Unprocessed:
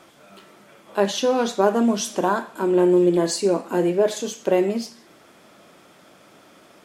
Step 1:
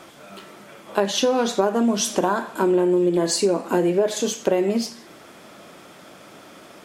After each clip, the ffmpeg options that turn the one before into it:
-af "acompressor=threshold=0.0794:ratio=6,volume=2"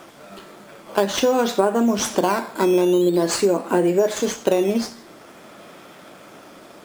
-filter_complex "[0:a]asplit=2[s0][s1];[s1]acrusher=samples=10:mix=1:aa=0.000001:lfo=1:lforange=10:lforate=0.47,volume=0.631[s2];[s0][s2]amix=inputs=2:normalize=0,lowshelf=f=160:g=-3.5,volume=0.794"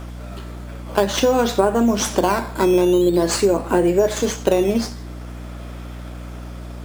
-af "aeval=exprs='val(0)+0.0224*(sin(2*PI*60*n/s)+sin(2*PI*2*60*n/s)/2+sin(2*PI*3*60*n/s)/3+sin(2*PI*4*60*n/s)/4+sin(2*PI*5*60*n/s)/5)':c=same,volume=1.19"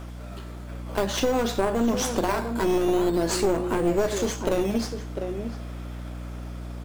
-filter_complex "[0:a]asplit=2[s0][s1];[s1]adelay=699.7,volume=0.355,highshelf=f=4000:g=-15.7[s2];[s0][s2]amix=inputs=2:normalize=0,aeval=exprs='clip(val(0),-1,0.112)':c=same,volume=0.562"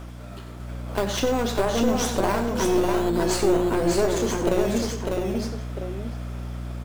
-af "aecho=1:1:91|599:0.251|0.668"

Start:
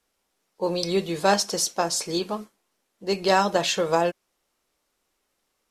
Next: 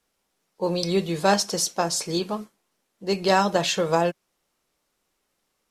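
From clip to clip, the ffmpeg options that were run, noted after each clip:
-af "equalizer=f=160:w=2:g=5"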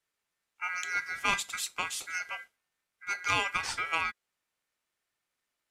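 -af "aeval=exprs='0.531*(cos(1*acos(clip(val(0)/0.531,-1,1)))-cos(1*PI/2))+0.0422*(cos(3*acos(clip(val(0)/0.531,-1,1)))-cos(3*PI/2))':c=same,aeval=exprs='val(0)*sin(2*PI*1800*n/s)':c=same,volume=0.562"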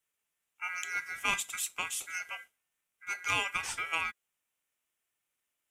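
-af "aexciter=amount=1.3:drive=4.3:freq=2400,volume=0.631"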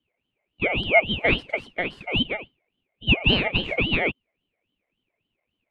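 -af "lowpass=f=1400:t=q:w=14,aeval=exprs='val(0)*sin(2*PI*1200*n/s+1200*0.4/3.6*sin(2*PI*3.6*n/s))':c=same,volume=1.68"

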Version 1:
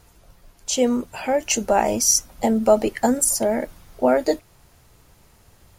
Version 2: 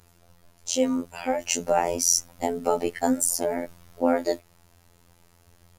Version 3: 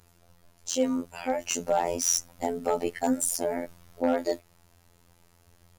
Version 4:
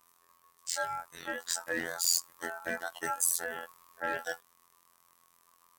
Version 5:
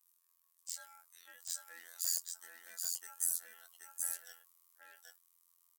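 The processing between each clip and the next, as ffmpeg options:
-af "afftfilt=real='hypot(re,im)*cos(PI*b)':imag='0':win_size=2048:overlap=0.75,volume=0.891"
-af "asoftclip=type=hard:threshold=0.251,volume=0.75"
-af "aeval=exprs='val(0)*sin(2*PI*1100*n/s)':c=same,crystalizer=i=2:c=0,volume=0.447"
-filter_complex "[0:a]aderivative,asplit=2[s0][s1];[s1]aecho=0:1:779:0.668[s2];[s0][s2]amix=inputs=2:normalize=0,volume=0.422"

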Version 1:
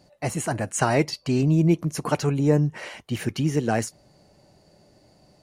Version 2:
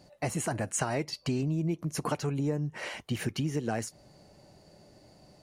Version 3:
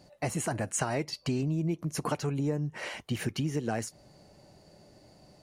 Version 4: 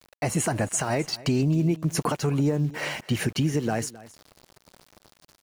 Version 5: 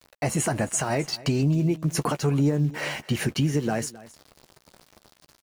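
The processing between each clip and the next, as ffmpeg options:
-af "acompressor=threshold=0.0398:ratio=5"
-af anull
-af "alimiter=limit=0.0794:level=0:latency=1:release=115,aeval=exprs='val(0)*gte(abs(val(0)),0.00335)':c=same,aecho=1:1:264:0.112,volume=2.37"
-filter_complex "[0:a]asplit=2[s0][s1];[s1]adelay=14,volume=0.266[s2];[s0][s2]amix=inputs=2:normalize=0"

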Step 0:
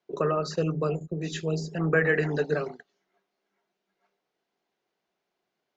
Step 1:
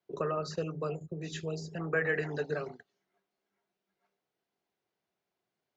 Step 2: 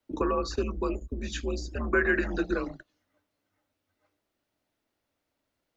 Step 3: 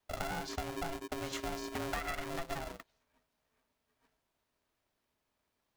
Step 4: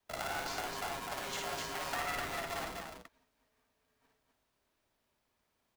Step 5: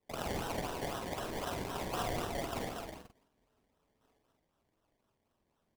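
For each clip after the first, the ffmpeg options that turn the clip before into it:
-filter_complex "[0:a]equalizer=f=100:w=1.3:g=11,acrossover=split=370[s0][s1];[s0]acompressor=threshold=0.0224:ratio=6[s2];[s2][s1]amix=inputs=2:normalize=0,volume=0.501"
-af "afreqshift=-100,volume=1.88"
-af "acompressor=threshold=0.02:ratio=6,aeval=exprs='val(0)*sgn(sin(2*PI*340*n/s))':c=same,volume=0.841"
-filter_complex "[0:a]acrossover=split=510|1200[s0][s1][s2];[s0]aeval=exprs='(mod(141*val(0)+1,2)-1)/141':c=same[s3];[s3][s1][s2]amix=inputs=3:normalize=0,aecho=1:1:55.39|253.6:0.708|0.631"
-filter_complex "[0:a]acrusher=samples=27:mix=1:aa=0.000001:lfo=1:lforange=16.2:lforate=3.9,asplit=2[s0][s1];[s1]adelay=46,volume=0.501[s2];[s0][s2]amix=inputs=2:normalize=0"

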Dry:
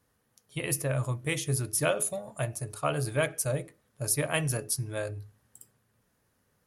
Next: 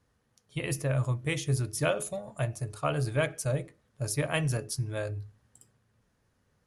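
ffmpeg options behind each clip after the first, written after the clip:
-af "lowpass=7800,lowshelf=f=110:g=7.5,volume=0.891"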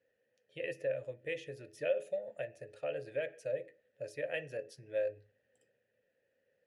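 -filter_complex "[0:a]acompressor=threshold=0.02:ratio=2,asplit=3[s0][s1][s2];[s0]bandpass=f=530:t=q:w=8,volume=1[s3];[s1]bandpass=f=1840:t=q:w=8,volume=0.501[s4];[s2]bandpass=f=2480:t=q:w=8,volume=0.355[s5];[s3][s4][s5]amix=inputs=3:normalize=0,volume=2.37"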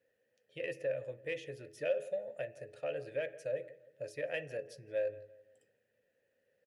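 -filter_complex "[0:a]asplit=2[s0][s1];[s1]adelay=169,lowpass=f=1900:p=1,volume=0.119,asplit=2[s2][s3];[s3]adelay=169,lowpass=f=1900:p=1,volume=0.4,asplit=2[s4][s5];[s5]adelay=169,lowpass=f=1900:p=1,volume=0.4[s6];[s0][s2][s4][s6]amix=inputs=4:normalize=0,asplit=2[s7][s8];[s8]asoftclip=type=tanh:threshold=0.0168,volume=0.266[s9];[s7][s9]amix=inputs=2:normalize=0,volume=0.841"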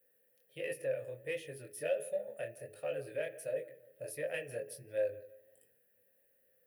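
-filter_complex "[0:a]flanger=delay=19:depth=7.3:speed=1.4,acrossover=split=430[s0][s1];[s1]aexciter=amount=12.9:drive=3.4:freq=9400[s2];[s0][s2]amix=inputs=2:normalize=0,volume=1.33"

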